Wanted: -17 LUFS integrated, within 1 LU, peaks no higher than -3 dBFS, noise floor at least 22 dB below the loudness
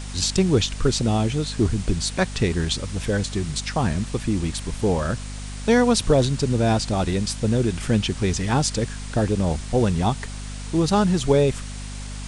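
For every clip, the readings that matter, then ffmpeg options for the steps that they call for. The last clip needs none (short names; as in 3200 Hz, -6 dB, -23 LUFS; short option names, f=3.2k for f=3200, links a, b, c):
hum 50 Hz; harmonics up to 250 Hz; hum level -31 dBFS; noise floor -33 dBFS; noise floor target -45 dBFS; loudness -22.5 LUFS; peak -6.0 dBFS; loudness target -17.0 LUFS
-> -af "bandreject=f=50:t=h:w=6,bandreject=f=100:t=h:w=6,bandreject=f=150:t=h:w=6,bandreject=f=200:t=h:w=6,bandreject=f=250:t=h:w=6"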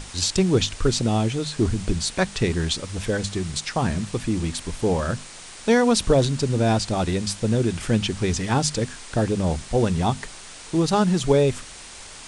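hum none; noise floor -41 dBFS; noise floor target -45 dBFS
-> -af "afftdn=nr=6:nf=-41"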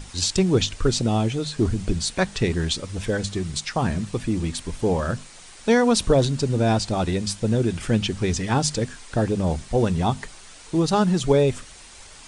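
noise floor -45 dBFS; loudness -23.0 LUFS; peak -6.5 dBFS; loudness target -17.0 LUFS
-> -af "volume=6dB,alimiter=limit=-3dB:level=0:latency=1"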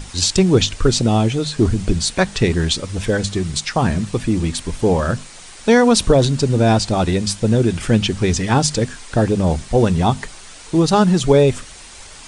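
loudness -17.0 LUFS; peak -3.0 dBFS; noise floor -39 dBFS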